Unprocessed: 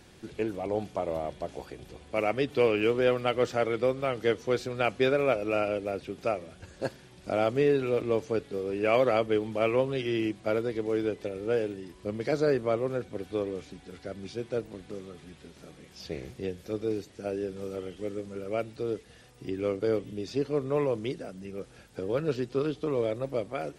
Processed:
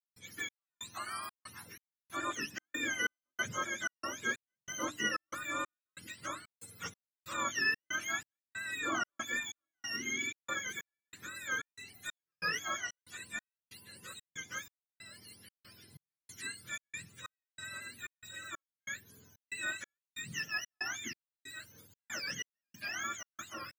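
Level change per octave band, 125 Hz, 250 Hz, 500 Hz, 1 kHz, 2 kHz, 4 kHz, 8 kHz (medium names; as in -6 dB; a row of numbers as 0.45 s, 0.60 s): -18.5 dB, -16.5 dB, -25.0 dB, -6.5 dB, +2.5 dB, +0.5 dB, no reading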